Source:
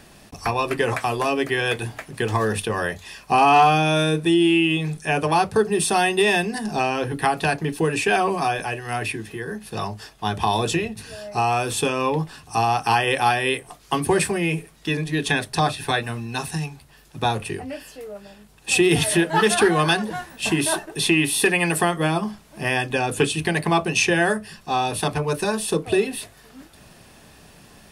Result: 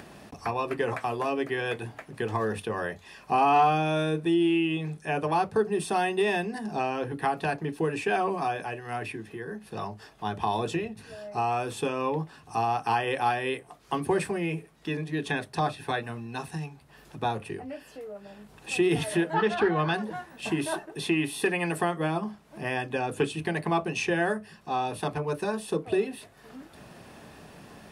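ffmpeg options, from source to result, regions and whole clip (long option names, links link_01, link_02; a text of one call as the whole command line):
ffmpeg -i in.wav -filter_complex "[0:a]asettb=1/sr,asplit=3[link_01][link_02][link_03];[link_01]atrim=end=19.344[link_04];[link_02]atrim=start=19.34:end=19.94,asetpts=PTS-STARTPTS,afade=type=in:duration=0.004:curve=qsin,afade=type=out:start_time=0.596:duration=0.004:curve=qsin,lowpass=4100,asubboost=boost=8.5:cutoff=160[link_05];[link_03]atrim=start=19.936[link_06];[link_04][link_05]acrossfade=duration=0.004:curve1=hsin:curve2=qsin[link_07];[link_07][link_06]acrossfade=duration=0.004:curve1=qsin:curve2=hsin,acompressor=mode=upward:threshold=-30dB:ratio=2.5,highpass=frequency=140:poles=1,highshelf=frequency=2600:gain=-11,volume=-5dB" out.wav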